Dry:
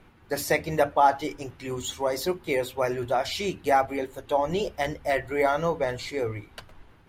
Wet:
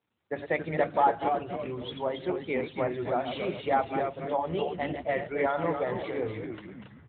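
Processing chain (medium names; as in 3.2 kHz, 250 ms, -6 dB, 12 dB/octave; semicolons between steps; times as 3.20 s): chunks repeated in reverse 129 ms, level -8 dB; gate with hold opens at -41 dBFS; on a send: frequency-shifting echo 276 ms, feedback 40%, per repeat -120 Hz, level -6 dB; on the sum: trim -4.5 dB; AMR-NB 12.2 kbps 8 kHz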